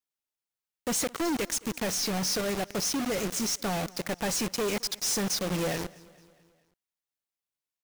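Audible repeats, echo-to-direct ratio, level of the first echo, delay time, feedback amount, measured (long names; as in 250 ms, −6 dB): 3, −21.5 dB, −23.0 dB, 218 ms, 56%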